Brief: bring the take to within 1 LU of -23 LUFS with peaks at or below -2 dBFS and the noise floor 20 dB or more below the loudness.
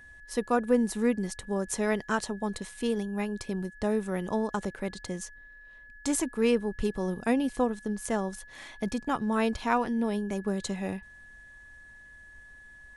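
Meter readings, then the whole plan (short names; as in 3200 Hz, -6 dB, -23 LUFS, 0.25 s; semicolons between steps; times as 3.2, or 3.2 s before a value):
steady tone 1700 Hz; tone level -49 dBFS; loudness -30.5 LUFS; peak -12.0 dBFS; loudness target -23.0 LUFS
-> notch 1700 Hz, Q 30; gain +7.5 dB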